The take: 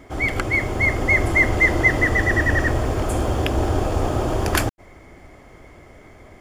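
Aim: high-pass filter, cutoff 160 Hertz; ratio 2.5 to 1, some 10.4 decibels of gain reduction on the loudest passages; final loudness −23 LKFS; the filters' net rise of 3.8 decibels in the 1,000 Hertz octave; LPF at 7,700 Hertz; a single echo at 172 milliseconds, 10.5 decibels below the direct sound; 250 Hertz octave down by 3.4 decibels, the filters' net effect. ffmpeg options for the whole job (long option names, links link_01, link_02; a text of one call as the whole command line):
ffmpeg -i in.wav -af "highpass=160,lowpass=7700,equalizer=frequency=250:width_type=o:gain=-4.5,equalizer=frequency=1000:width_type=o:gain=5.5,acompressor=threshold=-28dB:ratio=2.5,aecho=1:1:172:0.299,volume=4dB" out.wav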